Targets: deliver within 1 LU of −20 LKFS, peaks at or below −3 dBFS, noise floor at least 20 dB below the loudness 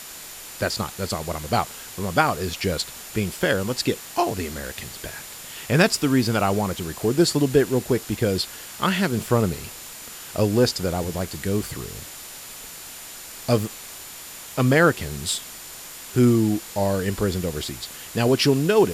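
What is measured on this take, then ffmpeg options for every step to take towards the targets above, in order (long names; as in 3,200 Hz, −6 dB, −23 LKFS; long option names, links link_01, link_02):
interfering tone 7,100 Hz; level of the tone −46 dBFS; background noise floor −39 dBFS; target noise floor −43 dBFS; integrated loudness −23.0 LKFS; sample peak −2.5 dBFS; target loudness −20.0 LKFS
→ -af "bandreject=frequency=7100:width=30"
-af "afftdn=noise_reduction=6:noise_floor=-39"
-af "volume=3dB,alimiter=limit=-3dB:level=0:latency=1"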